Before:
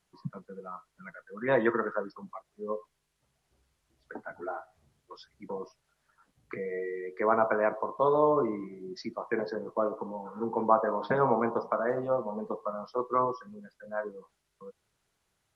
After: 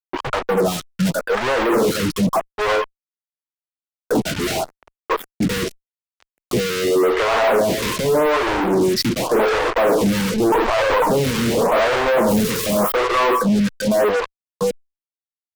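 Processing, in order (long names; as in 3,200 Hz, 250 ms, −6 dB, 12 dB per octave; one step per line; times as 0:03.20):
0:12.28–0:12.92: spike at every zero crossing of −34 dBFS
compressor whose output falls as the input rises −32 dBFS, ratio −1
tilt shelving filter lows +6 dB, about 1,500 Hz
0:10.32–0:11.07: linear-prediction vocoder at 8 kHz pitch kept
fuzz pedal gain 51 dB, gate −49 dBFS
phaser with staggered stages 0.86 Hz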